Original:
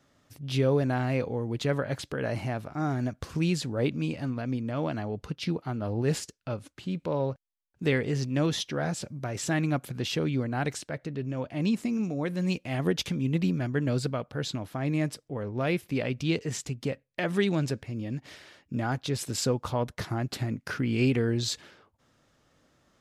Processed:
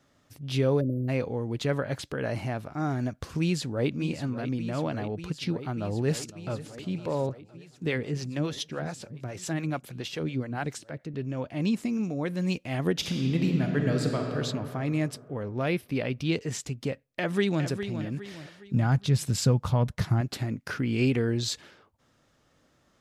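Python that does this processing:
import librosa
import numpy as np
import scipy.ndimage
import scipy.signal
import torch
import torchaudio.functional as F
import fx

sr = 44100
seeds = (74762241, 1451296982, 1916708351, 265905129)

y = fx.spec_erase(x, sr, start_s=0.81, length_s=0.27, low_hz=620.0, high_hz=11000.0)
y = fx.echo_throw(y, sr, start_s=3.4, length_s=0.53, ms=590, feedback_pct=85, wet_db=-11.5)
y = fx.echo_throw(y, sr, start_s=5.63, length_s=0.92, ms=510, feedback_pct=70, wet_db=-17.0)
y = fx.harmonic_tremolo(y, sr, hz=7.1, depth_pct=70, crossover_hz=440.0, at=(7.29, 11.14))
y = fx.reverb_throw(y, sr, start_s=12.92, length_s=1.45, rt60_s=2.8, drr_db=2.0)
y = fx.peak_eq(y, sr, hz=7100.0, db=-8.5, octaves=0.35, at=(15.68, 16.32))
y = fx.echo_throw(y, sr, start_s=17.06, length_s=0.58, ms=410, feedback_pct=40, wet_db=-9.0)
y = fx.low_shelf_res(y, sr, hz=230.0, db=7.5, q=1.5, at=(18.73, 20.21))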